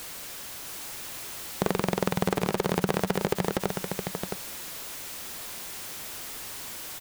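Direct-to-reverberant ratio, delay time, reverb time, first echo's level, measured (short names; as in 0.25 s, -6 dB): none, 0.667 s, none, -5.5 dB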